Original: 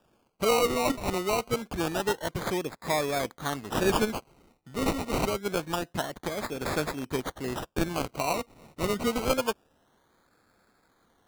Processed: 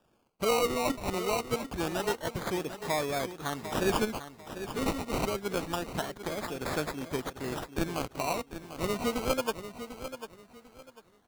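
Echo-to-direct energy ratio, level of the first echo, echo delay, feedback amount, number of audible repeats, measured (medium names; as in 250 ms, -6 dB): -10.5 dB, -11.0 dB, 746 ms, 27%, 3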